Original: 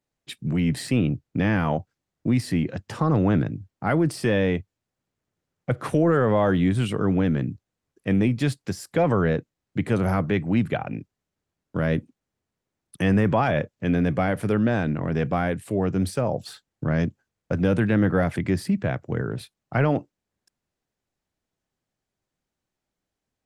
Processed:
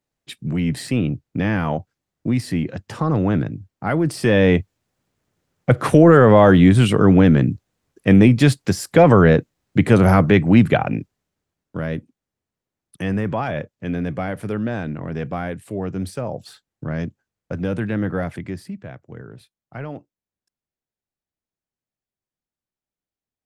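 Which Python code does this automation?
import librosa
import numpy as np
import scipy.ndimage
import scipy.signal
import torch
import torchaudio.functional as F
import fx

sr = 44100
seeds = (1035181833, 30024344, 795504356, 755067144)

y = fx.gain(x, sr, db=fx.line((3.99, 1.5), (4.58, 9.5), (10.86, 9.5), (11.9, -2.5), (18.24, -2.5), (18.82, -10.5)))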